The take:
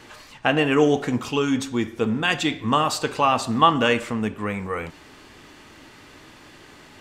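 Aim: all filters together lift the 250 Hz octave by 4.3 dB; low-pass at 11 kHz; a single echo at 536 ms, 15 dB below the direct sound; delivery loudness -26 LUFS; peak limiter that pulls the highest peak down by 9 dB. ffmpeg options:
-af "lowpass=11000,equalizer=f=250:t=o:g=5,alimiter=limit=0.282:level=0:latency=1,aecho=1:1:536:0.178,volume=0.631"

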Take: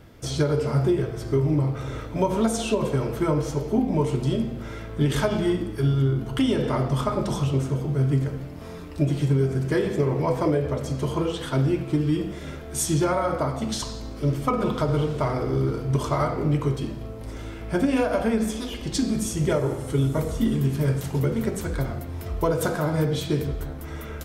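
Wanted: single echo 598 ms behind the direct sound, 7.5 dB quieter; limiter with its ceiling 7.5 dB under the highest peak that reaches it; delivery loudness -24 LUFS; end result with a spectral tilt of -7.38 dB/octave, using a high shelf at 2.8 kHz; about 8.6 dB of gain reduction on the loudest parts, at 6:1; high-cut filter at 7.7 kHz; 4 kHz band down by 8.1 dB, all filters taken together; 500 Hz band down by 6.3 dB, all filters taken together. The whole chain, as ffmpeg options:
-af "lowpass=7700,equalizer=f=500:t=o:g=-8,highshelf=f=2800:g=-7,equalizer=f=4000:t=o:g=-4.5,acompressor=threshold=0.0398:ratio=6,alimiter=level_in=1.19:limit=0.0631:level=0:latency=1,volume=0.841,aecho=1:1:598:0.422,volume=2.99"

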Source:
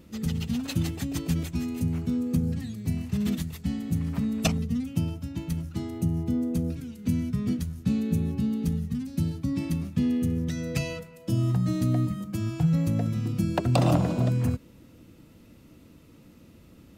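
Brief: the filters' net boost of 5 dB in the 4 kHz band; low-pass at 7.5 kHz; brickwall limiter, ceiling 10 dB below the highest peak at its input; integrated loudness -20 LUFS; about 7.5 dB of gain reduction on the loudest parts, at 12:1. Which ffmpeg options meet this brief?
-af "lowpass=7500,equalizer=f=4000:t=o:g=6.5,acompressor=threshold=0.0562:ratio=12,volume=4.47,alimiter=limit=0.282:level=0:latency=1"

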